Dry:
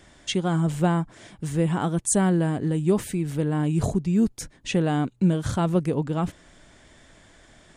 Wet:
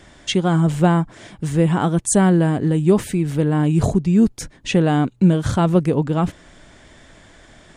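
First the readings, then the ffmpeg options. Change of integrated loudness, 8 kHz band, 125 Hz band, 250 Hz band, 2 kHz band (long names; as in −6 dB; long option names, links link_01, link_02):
+6.5 dB, +3.5 dB, +6.5 dB, +6.5 dB, +6.0 dB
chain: -af "highshelf=frequency=7200:gain=-5.5,volume=6.5dB"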